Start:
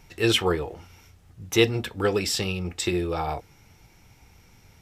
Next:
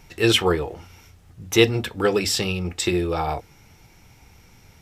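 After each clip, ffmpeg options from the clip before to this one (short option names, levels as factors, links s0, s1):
-af "bandreject=f=50:t=h:w=6,bandreject=f=100:t=h:w=6,volume=1.5"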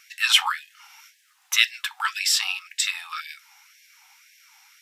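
-af "asubboost=boost=10:cutoff=170,afftfilt=real='re*gte(b*sr/1024,700*pow(1600/700,0.5+0.5*sin(2*PI*1.9*pts/sr)))':imag='im*gte(b*sr/1024,700*pow(1600/700,0.5+0.5*sin(2*PI*1.9*pts/sr)))':win_size=1024:overlap=0.75,volume=1.41"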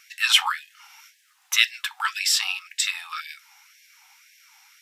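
-af anull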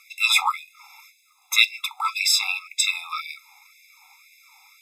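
-af "afftfilt=real='re*eq(mod(floor(b*sr/1024/680),2),1)':imag='im*eq(mod(floor(b*sr/1024/680),2),1)':win_size=1024:overlap=0.75,volume=1.58"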